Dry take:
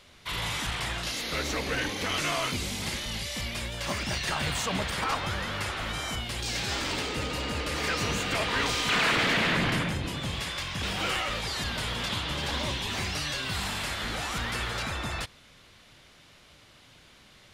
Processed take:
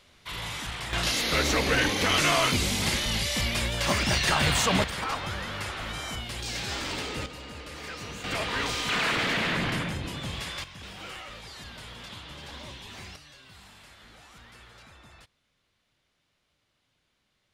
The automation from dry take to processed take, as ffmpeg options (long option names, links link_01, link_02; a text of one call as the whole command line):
ffmpeg -i in.wav -af "asetnsamples=nb_out_samples=441:pad=0,asendcmd='0.93 volume volume 6dB;4.84 volume volume -2dB;7.26 volume volume -10dB;8.24 volume volume -2dB;10.64 volume volume -11.5dB;13.16 volume volume -19.5dB',volume=-3.5dB" out.wav